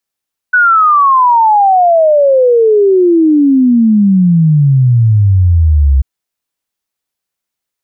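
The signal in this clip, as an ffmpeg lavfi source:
-f lavfi -i "aevalsrc='0.596*clip(min(t,5.49-t)/0.01,0,1)*sin(2*PI*1500*5.49/log(65/1500)*(exp(log(65/1500)*t/5.49)-1))':d=5.49:s=44100"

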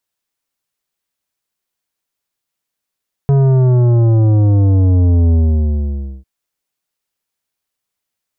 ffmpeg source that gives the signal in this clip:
-f lavfi -i "aevalsrc='0.355*clip((2.95-t)/0.91,0,1)*tanh(3.55*sin(2*PI*140*2.95/log(65/140)*(exp(log(65/140)*t/2.95)-1)))/tanh(3.55)':d=2.95:s=44100"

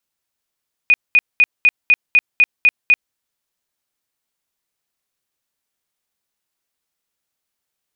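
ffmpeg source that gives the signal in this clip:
-f lavfi -i "aevalsrc='0.422*sin(2*PI*2470*mod(t,0.25))*lt(mod(t,0.25),97/2470)':d=2.25:s=44100"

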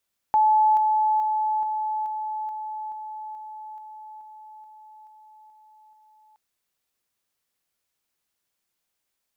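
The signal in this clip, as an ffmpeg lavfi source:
-f lavfi -i "aevalsrc='pow(10,(-15-3*floor(t/0.43))/20)*sin(2*PI*862*t)':d=6.02:s=44100"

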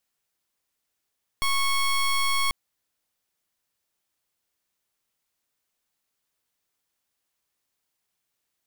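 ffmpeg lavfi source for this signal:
-f lavfi -i "aevalsrc='0.0708*(2*lt(mod(1100*t,1),0.16)-1)':d=1.09:s=44100"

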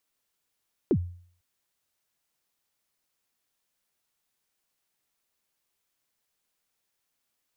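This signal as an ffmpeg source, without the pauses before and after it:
-f lavfi -i "aevalsrc='0.15*pow(10,-3*t/0.52)*sin(2*PI*(440*0.065/log(88/440)*(exp(log(88/440)*min(t,0.065)/0.065)-1)+88*max(t-0.065,0)))':d=0.5:s=44100"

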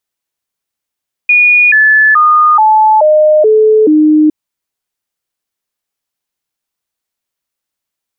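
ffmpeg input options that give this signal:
-f lavfi -i "aevalsrc='0.668*clip(min(mod(t,0.43),0.43-mod(t,0.43))/0.005,0,1)*sin(2*PI*2450*pow(2,-floor(t/0.43)/2)*mod(t,0.43))':d=3.01:s=44100"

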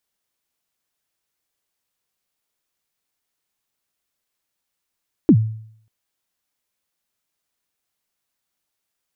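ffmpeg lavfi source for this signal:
-f lavfi -i "aevalsrc='0.562*pow(10,-3*t/0.63)*sin(2*PI*(360*0.069/log(110/360)*(exp(log(110/360)*min(t,0.069)/0.069)-1)+110*max(t-0.069,0)))':d=0.59:s=44100"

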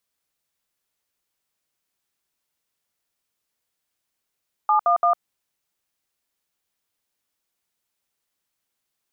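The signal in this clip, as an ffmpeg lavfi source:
-f lavfi -i "aevalsrc='0.133*clip(min(mod(t,0.17),0.104-mod(t,0.17))/0.002,0,1)*(eq(floor(t/0.17),0)*(sin(2*PI*852*mod(t,0.17))+sin(2*PI*1209*mod(t,0.17)))+eq(floor(t/0.17),1)*(sin(2*PI*697*mod(t,0.17))+sin(2*PI*1209*mod(t,0.17)))+eq(floor(t/0.17),2)*(sin(2*PI*697*mod(t,0.17))+sin(2*PI*1209*mod(t,0.17))))':d=0.51:s=44100"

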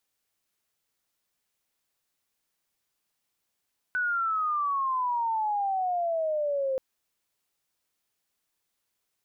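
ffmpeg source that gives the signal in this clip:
-f lavfi -i "aevalsrc='pow(10,(-24.5-0.5*t/2.83)/20)*sin(2*PI*1500*2.83/log(520/1500)*(exp(log(520/1500)*t/2.83)-1))':d=2.83:s=44100"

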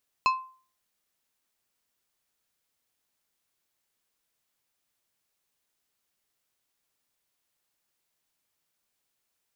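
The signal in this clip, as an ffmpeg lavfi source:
-f lavfi -i "aevalsrc='0.141*pow(10,-3*t/0.42)*sin(2*PI*1040*t)+0.0708*pow(10,-3*t/0.221)*sin(2*PI*2600*t)+0.0355*pow(10,-3*t/0.159)*sin(2*PI*4160*t)+0.0178*pow(10,-3*t/0.136)*sin(2*PI*5200*t)+0.00891*pow(10,-3*t/0.113)*sin(2*PI*6760*t)':d=0.89:s=44100"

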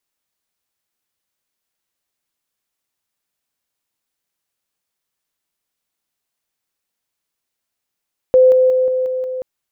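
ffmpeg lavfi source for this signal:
-f lavfi -i "aevalsrc='pow(10,(-6-3*floor(t/0.18))/20)*sin(2*PI*513*t)':d=1.08:s=44100"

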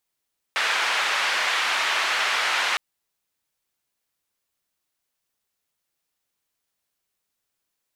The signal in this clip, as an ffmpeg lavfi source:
-f lavfi -i "anoisesrc=c=white:d=2.21:r=44100:seed=1,highpass=f=1000,lowpass=f=2400,volume=-7.2dB"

